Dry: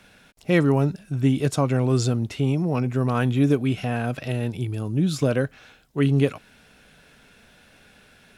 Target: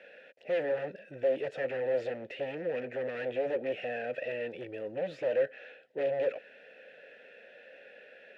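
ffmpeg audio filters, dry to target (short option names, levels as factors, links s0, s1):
-filter_complex "[0:a]aeval=exprs='0.119*(abs(mod(val(0)/0.119+3,4)-2)-1)':c=same,asplit=2[s0][s1];[s1]highpass=f=720:p=1,volume=11.2,asoftclip=type=tanh:threshold=0.126[s2];[s0][s2]amix=inputs=2:normalize=0,lowpass=f=1200:p=1,volume=0.501,asplit=3[s3][s4][s5];[s3]bandpass=f=530:t=q:w=8,volume=1[s6];[s4]bandpass=f=1840:t=q:w=8,volume=0.501[s7];[s5]bandpass=f=2480:t=q:w=8,volume=0.355[s8];[s6][s7][s8]amix=inputs=3:normalize=0,volume=1.41"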